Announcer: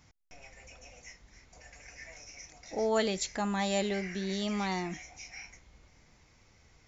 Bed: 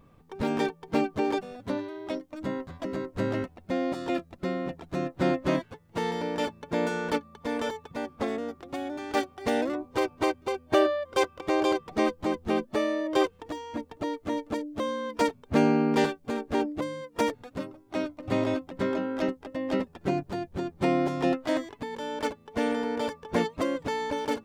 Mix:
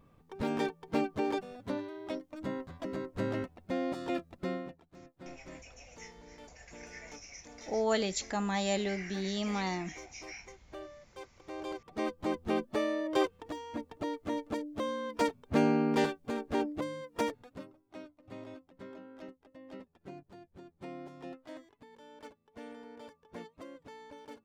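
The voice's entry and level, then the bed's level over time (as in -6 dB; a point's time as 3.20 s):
4.95 s, -1.0 dB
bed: 4.54 s -5 dB
4.93 s -24 dB
11.14 s -24 dB
12.30 s -4.5 dB
17.14 s -4.5 dB
18.18 s -20 dB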